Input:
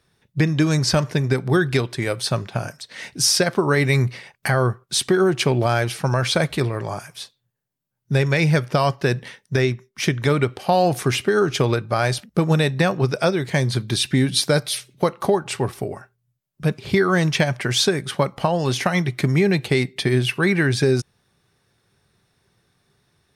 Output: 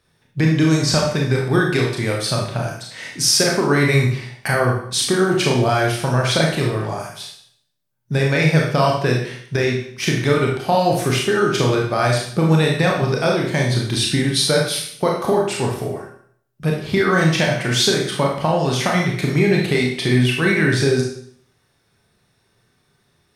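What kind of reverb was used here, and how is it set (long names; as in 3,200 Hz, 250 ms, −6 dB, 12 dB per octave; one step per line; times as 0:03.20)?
four-comb reverb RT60 0.6 s, combs from 25 ms, DRR −1.5 dB
level −1 dB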